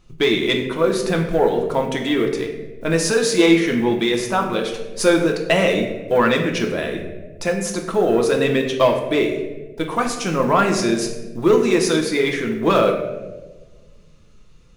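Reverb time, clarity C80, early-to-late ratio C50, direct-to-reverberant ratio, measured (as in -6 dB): 1.3 s, 8.5 dB, 6.5 dB, 1.5 dB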